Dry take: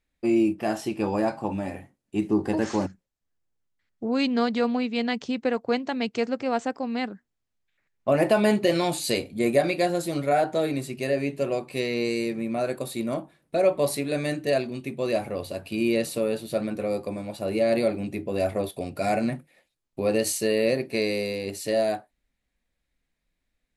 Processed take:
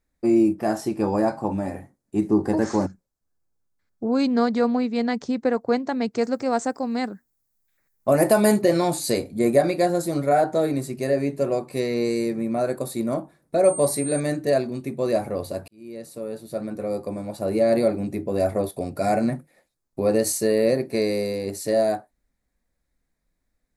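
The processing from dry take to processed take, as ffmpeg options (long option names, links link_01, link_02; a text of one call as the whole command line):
ffmpeg -i in.wav -filter_complex "[0:a]asettb=1/sr,asplit=3[link_01][link_02][link_03];[link_01]atrim=end=2.864[link_04];[link_02]atrim=start=2.86:end=4.28,asetpts=PTS-STARTPTS,afade=type=in:duration=0.004:curve=qsin,afade=type=out:start_time=1.416:duration=0.004:curve=qsin,bandreject=frequency=1900:width=8.9[link_05];[link_03]atrim=start=4.276[link_06];[link_04][link_05]acrossfade=duration=0.004:curve1=hsin:curve2=qsin[link_07];[link_07][link_06]acrossfade=duration=0.004:curve1=qsin:curve2=hsin,asettb=1/sr,asplit=3[link_08][link_09][link_10];[link_08]atrim=end=6.214[link_11];[link_09]atrim=start=6.21:end=8.62,asetpts=PTS-STARTPTS,afade=type=in:duration=0.004:curve=qsin,afade=type=out:start_time=2.406:duration=0.004:curve=qsin,aemphasis=mode=production:type=50fm[link_12];[link_10]atrim=start=8.616[link_13];[link_11][link_12]acrossfade=duration=0.004:curve1=hsin:curve2=qsin[link_14];[link_14][link_13]acrossfade=duration=0.004:curve1=qsin:curve2=hsin,asettb=1/sr,asplit=3[link_15][link_16][link_17];[link_15]atrim=end=13.644[link_18];[link_16]atrim=start=13.64:end=14.2,asetpts=PTS-STARTPTS,afade=type=in:duration=0.004:curve=qsin,afade=type=out:start_time=0.556:duration=0.004:curve=qsin,aeval=exprs='val(0)+0.0224*sin(2*PI*8700*n/s)':channel_layout=same[link_19];[link_17]atrim=start=14.196[link_20];[link_18][link_19]acrossfade=duration=0.004:curve1=hsin:curve2=qsin[link_21];[link_21][link_20]acrossfade=duration=0.004:curve1=qsin:curve2=hsin,asplit=2[link_22][link_23];[link_22]atrim=end=15.68,asetpts=PTS-STARTPTS,afade=type=out:start_time=15.676:duration=0.004:curve=hsin[link_24];[link_23]atrim=start=15.68,asetpts=PTS-STARTPTS,afade=type=in:duration=1.75[link_25];[link_24][link_25]concat=n=2:v=0:a=1,equalizer=frequency=2900:width_type=o:width=0.79:gain=-13.5,volume=3.5dB" out.wav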